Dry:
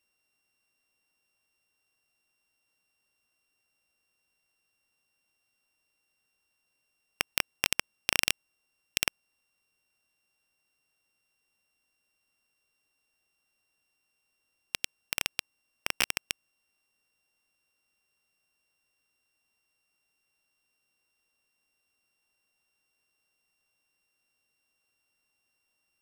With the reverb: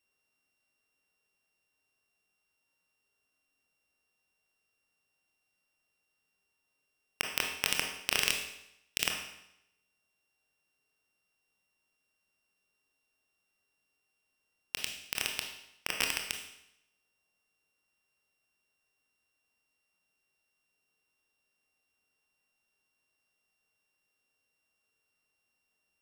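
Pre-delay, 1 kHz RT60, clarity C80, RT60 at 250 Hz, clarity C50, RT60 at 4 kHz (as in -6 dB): 23 ms, 0.80 s, 8.0 dB, 0.80 s, 5.0 dB, 0.80 s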